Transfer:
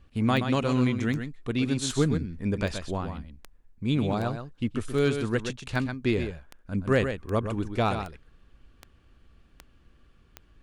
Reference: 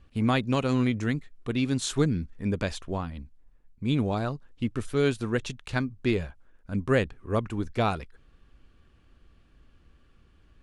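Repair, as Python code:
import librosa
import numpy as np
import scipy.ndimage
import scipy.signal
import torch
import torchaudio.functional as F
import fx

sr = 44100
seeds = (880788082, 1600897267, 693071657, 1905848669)

y = fx.fix_declip(x, sr, threshold_db=-13.5)
y = fx.fix_declick_ar(y, sr, threshold=10.0)
y = fx.fix_echo_inverse(y, sr, delay_ms=126, level_db=-8.0)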